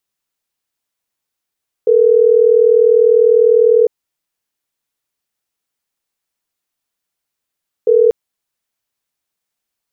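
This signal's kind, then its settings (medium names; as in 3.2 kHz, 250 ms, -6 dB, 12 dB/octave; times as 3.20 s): call progress tone ringback tone, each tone -9.5 dBFS 6.24 s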